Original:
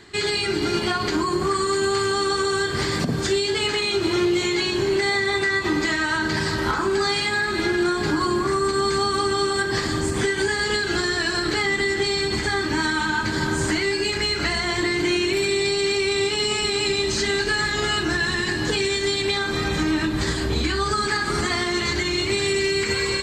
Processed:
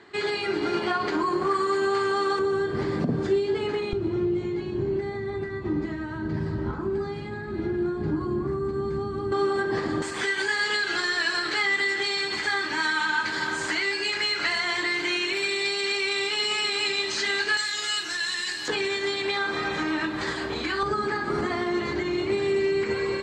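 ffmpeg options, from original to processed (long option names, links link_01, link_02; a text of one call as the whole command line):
ffmpeg -i in.wav -af "asetnsamples=nb_out_samples=441:pad=0,asendcmd='2.39 bandpass f 310;3.93 bandpass f 120;9.32 bandpass f 460;10.02 bandpass f 2000;17.57 bandpass f 5900;18.68 bandpass f 1100;20.83 bandpass f 460',bandpass=frequency=780:width_type=q:width=0.54:csg=0" out.wav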